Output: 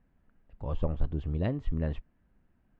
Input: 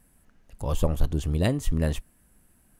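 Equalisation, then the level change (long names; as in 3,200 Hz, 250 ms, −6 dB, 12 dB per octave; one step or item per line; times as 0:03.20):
Butterworth low-pass 7,400 Hz
high-frequency loss of the air 450 metres
−5.5 dB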